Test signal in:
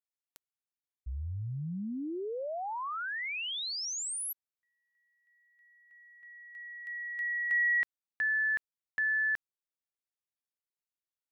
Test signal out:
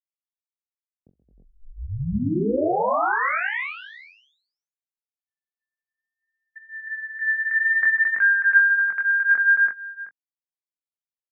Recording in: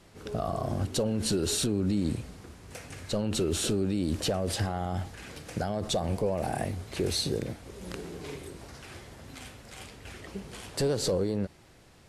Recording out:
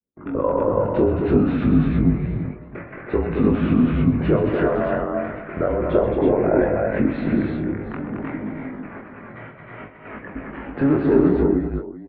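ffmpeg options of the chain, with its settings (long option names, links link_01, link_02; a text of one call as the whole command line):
ffmpeg -i in.wav -filter_complex "[0:a]afftdn=noise_reduction=23:noise_floor=-52,agate=range=-37dB:threshold=-46dB:ratio=16:release=67:detection=rms,acontrast=68,flanger=delay=19.5:depth=5.1:speed=0.6,asplit=2[link_01][link_02];[link_02]adelay=20,volume=-13dB[link_03];[link_01][link_03]amix=inputs=2:normalize=0,asplit=2[link_04][link_05];[link_05]aecho=0:1:44|129|220|311|331|712:0.251|0.299|0.501|0.376|0.631|0.141[link_06];[link_04][link_06]amix=inputs=2:normalize=0,highpass=frequency=260:width_type=q:width=0.5412,highpass=frequency=260:width_type=q:width=1.307,lowpass=frequency=2200:width_type=q:width=0.5176,lowpass=frequency=2200:width_type=q:width=0.7071,lowpass=frequency=2200:width_type=q:width=1.932,afreqshift=-140,volume=7.5dB" out.wav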